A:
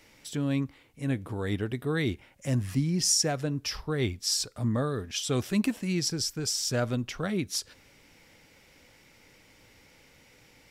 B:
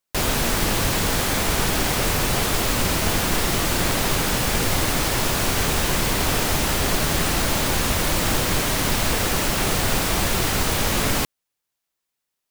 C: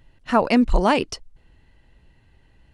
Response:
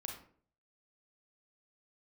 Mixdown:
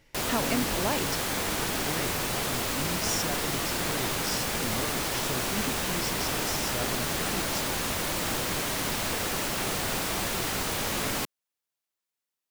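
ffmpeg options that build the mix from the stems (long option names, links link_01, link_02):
-filter_complex "[0:a]volume=-7.5dB[link_01];[1:a]volume=-7dB[link_02];[2:a]acompressor=threshold=-22dB:ratio=6,volume=-3.5dB[link_03];[link_01][link_02][link_03]amix=inputs=3:normalize=0,lowshelf=frequency=93:gain=-11"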